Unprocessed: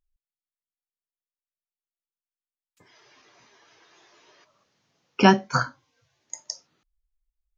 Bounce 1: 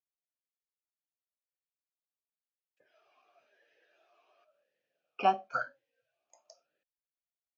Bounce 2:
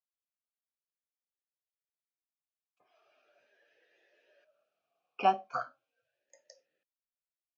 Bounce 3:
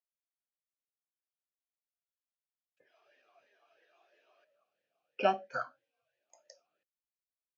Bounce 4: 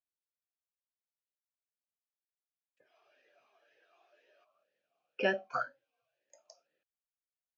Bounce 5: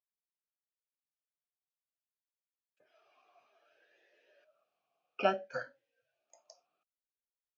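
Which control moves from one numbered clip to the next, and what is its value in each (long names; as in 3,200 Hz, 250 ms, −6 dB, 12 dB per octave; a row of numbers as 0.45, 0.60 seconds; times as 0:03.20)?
formant filter swept between two vowels, speed: 0.94, 0.38, 3, 2, 0.61 Hertz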